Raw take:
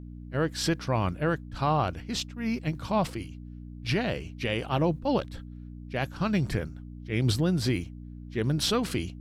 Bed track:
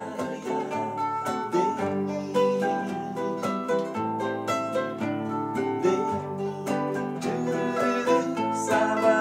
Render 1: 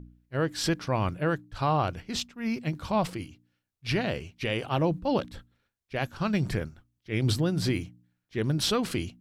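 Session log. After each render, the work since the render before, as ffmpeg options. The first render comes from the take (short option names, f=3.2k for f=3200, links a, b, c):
-af "bandreject=f=60:t=h:w=4,bandreject=f=120:t=h:w=4,bandreject=f=180:t=h:w=4,bandreject=f=240:t=h:w=4,bandreject=f=300:t=h:w=4"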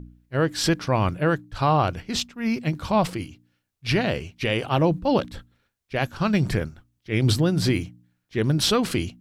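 -af "volume=5.5dB"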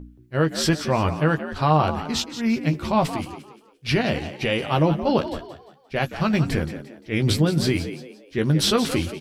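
-filter_complex "[0:a]asplit=2[a][b];[b]adelay=13,volume=-7dB[c];[a][c]amix=inputs=2:normalize=0,asplit=2[d][e];[e]asplit=4[f][g][h][i];[f]adelay=174,afreqshift=63,volume=-11.5dB[j];[g]adelay=348,afreqshift=126,volume=-20.6dB[k];[h]adelay=522,afreqshift=189,volume=-29.7dB[l];[i]adelay=696,afreqshift=252,volume=-38.9dB[m];[j][k][l][m]amix=inputs=4:normalize=0[n];[d][n]amix=inputs=2:normalize=0"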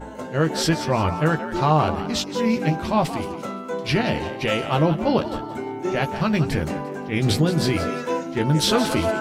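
-filter_complex "[1:a]volume=-3dB[a];[0:a][a]amix=inputs=2:normalize=0"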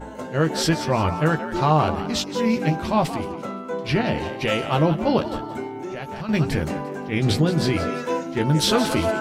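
-filter_complex "[0:a]asettb=1/sr,asplit=3[a][b][c];[a]atrim=end=3.164[d];[b]atrim=start=3.16:end=4.18,asetpts=PTS-STARTPTS,afade=t=in:d=0.004:c=qsin,afade=t=out:st=1.016:d=0.004:c=qsin,highshelf=f=3.4k:g=-6.5[e];[c]atrim=start=4.176[f];[d][e]acrossfade=d=0.004:c1=hsin:c2=qsin[g];[g][f]acrossfade=d=0.004:c1=qsin:c2=hsin,asettb=1/sr,asplit=3[h][i][j];[h]atrim=end=5.664[k];[i]atrim=start=5.66:end=6.29,asetpts=PTS-STARTPTS,afade=t=in:d=0.004:c=qsin,afade=t=out:st=0.626:d=0.004:c=qsin,acompressor=threshold=-28dB:ratio=6:attack=3.2:release=140:knee=1:detection=peak[l];[j]atrim=start=6.286[m];[k][l]acrossfade=d=0.004:c1=hsin:c2=qsin[n];[n][m]acrossfade=d=0.004:c1=qsin:c2=hsin,asettb=1/sr,asplit=3[o][p][q];[o]atrim=end=7.144[r];[p]atrim=start=7.14:end=7.95,asetpts=PTS-STARTPTS,afade=t=in:d=0.004:c=qsin,afade=t=out:st=0.806:d=0.004:c=qsin,highshelf=f=8.2k:g=-7[s];[q]atrim=start=7.946[t];[r][s]acrossfade=d=0.004:c1=hsin:c2=qsin[u];[u][t]acrossfade=d=0.004:c1=qsin:c2=hsin"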